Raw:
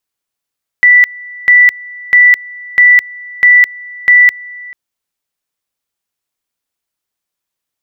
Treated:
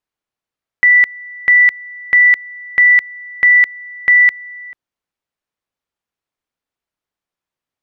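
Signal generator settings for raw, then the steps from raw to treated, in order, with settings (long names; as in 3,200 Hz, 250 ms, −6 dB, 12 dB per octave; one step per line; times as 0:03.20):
tone at two levels in turn 1,970 Hz −2 dBFS, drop 23.5 dB, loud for 0.21 s, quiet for 0.44 s, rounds 6
low-pass filter 1,900 Hz 6 dB per octave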